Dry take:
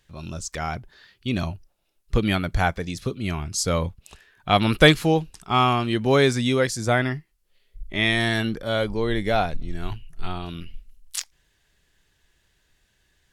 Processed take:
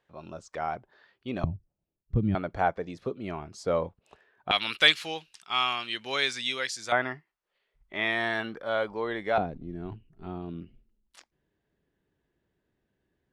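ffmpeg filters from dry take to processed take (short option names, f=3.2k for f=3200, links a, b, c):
-af "asetnsamples=n=441:p=0,asendcmd='1.44 bandpass f 130;2.35 bandpass f 600;4.51 bandpass f 3100;6.92 bandpass f 1000;9.38 bandpass f 290',bandpass=f=690:t=q:w=1:csg=0"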